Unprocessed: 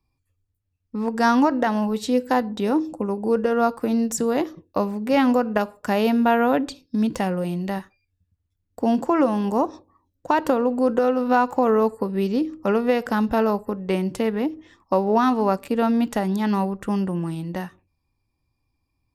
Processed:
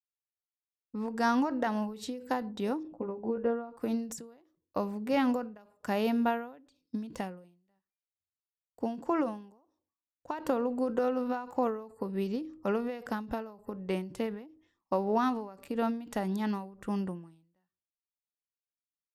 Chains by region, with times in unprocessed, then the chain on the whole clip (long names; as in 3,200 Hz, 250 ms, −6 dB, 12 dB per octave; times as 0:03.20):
0:02.83–0:03.77: high-frequency loss of the air 420 metres + double-tracking delay 17 ms −4 dB
whole clip: noise reduction from a noise print of the clip's start 16 dB; noise gate with hold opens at −46 dBFS; every ending faded ahead of time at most 100 dB per second; level −9 dB